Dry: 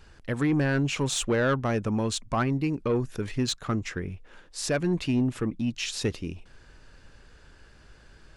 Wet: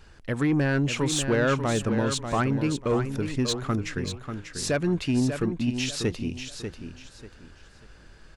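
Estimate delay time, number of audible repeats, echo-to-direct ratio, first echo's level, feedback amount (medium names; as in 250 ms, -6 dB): 591 ms, 3, -7.5 dB, -8.0 dB, 28%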